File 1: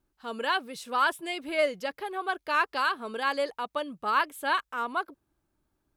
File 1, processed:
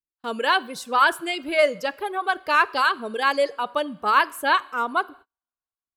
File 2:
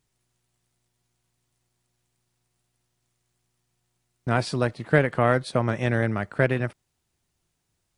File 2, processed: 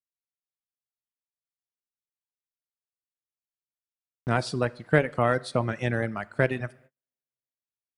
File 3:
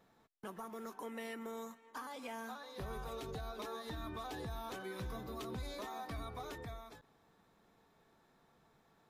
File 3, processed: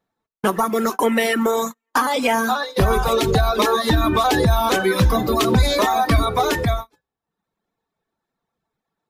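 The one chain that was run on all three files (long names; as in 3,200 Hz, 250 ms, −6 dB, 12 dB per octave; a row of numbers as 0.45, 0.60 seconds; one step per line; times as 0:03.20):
reverb reduction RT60 1.1 s
coupled-rooms reverb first 0.6 s, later 3.2 s, from −21 dB, DRR 18 dB
noise gate −52 dBFS, range −36 dB
normalise the peak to −6 dBFS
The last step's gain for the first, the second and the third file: +7.0, −1.5, +28.5 decibels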